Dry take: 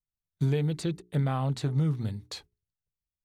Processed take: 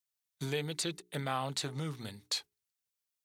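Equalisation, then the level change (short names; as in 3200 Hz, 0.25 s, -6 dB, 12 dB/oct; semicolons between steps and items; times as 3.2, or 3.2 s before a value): HPF 650 Hz 6 dB/oct; high shelf 2300 Hz +8 dB; 0.0 dB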